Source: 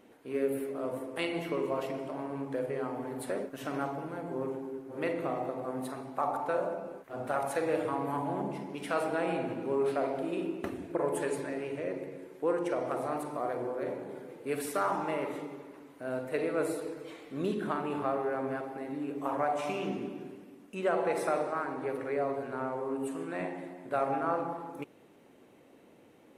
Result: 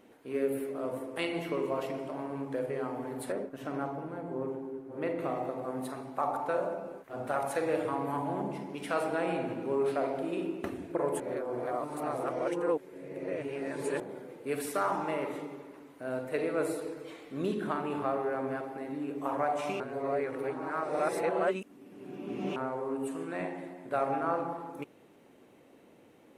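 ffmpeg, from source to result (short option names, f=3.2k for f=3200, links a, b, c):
-filter_complex "[0:a]asettb=1/sr,asplit=3[a][b][c];[a]atrim=end=3.324[d];[b]atrim=start=3.32:end=5.19,asetpts=PTS-STARTPTS,afade=t=in:d=0.004:c=qsin,afade=t=out:st=1.866:d=0.004:c=qsin,highshelf=f=2k:g=-9[e];[c]atrim=start=5.186[f];[d][e]acrossfade=d=0.004:c1=hsin:c2=qsin[g];[g][f]acrossfade=d=0.004:c1=qsin:c2=hsin,asplit=5[h][i][j][k][l];[h]atrim=end=11.202[m];[i]atrim=start=11.198:end=14.002,asetpts=PTS-STARTPTS,areverse[n];[j]atrim=start=13.998:end=19.802[o];[k]atrim=start=19.798:end=22.562,asetpts=PTS-STARTPTS,areverse[p];[l]atrim=start=22.558[q];[m][n]acrossfade=d=0.004:c1=hsin:c2=hsin[r];[r][o]acrossfade=d=0.004:c1=hsin:c2=hsin[s];[s][p]acrossfade=d=0.004:c1=hsin:c2=hsin[t];[t][q]acrossfade=d=0.004:c1=hsin:c2=hsin"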